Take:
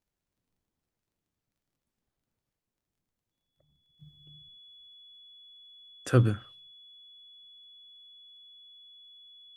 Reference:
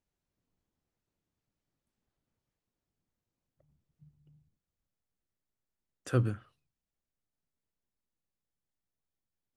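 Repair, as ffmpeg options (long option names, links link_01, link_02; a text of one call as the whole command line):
ffmpeg -i in.wav -af "adeclick=threshold=4,bandreject=frequency=3400:width=30,asetnsamples=nb_out_samples=441:pad=0,asendcmd='3.99 volume volume -6dB',volume=0dB" out.wav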